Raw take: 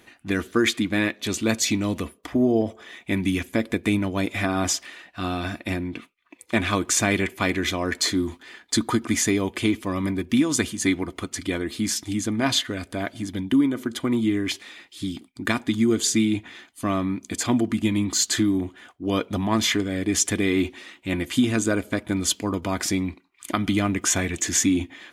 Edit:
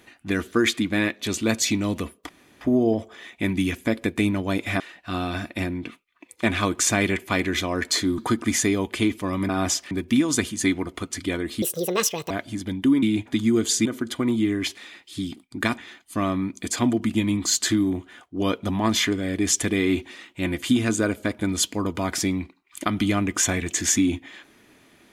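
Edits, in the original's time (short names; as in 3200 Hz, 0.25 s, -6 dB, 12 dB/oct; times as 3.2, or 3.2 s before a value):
2.29 insert room tone 0.32 s
4.48–4.9 move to 10.12
8.28–8.81 cut
11.83–12.98 speed 168%
13.7–15.62 swap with 16.2–16.45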